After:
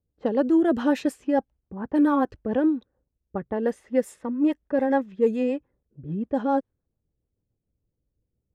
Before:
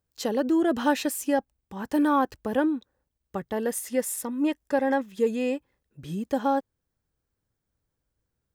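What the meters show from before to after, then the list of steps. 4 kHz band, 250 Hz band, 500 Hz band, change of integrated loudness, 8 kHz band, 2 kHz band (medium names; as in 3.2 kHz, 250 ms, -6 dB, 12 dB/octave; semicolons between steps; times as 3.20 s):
no reading, +3.0 dB, +2.0 dB, +2.0 dB, under -10 dB, -3.0 dB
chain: rotary cabinet horn 7 Hz; level-controlled noise filter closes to 560 Hz, open at -22 dBFS; treble shelf 2.3 kHz -11.5 dB; trim +4.5 dB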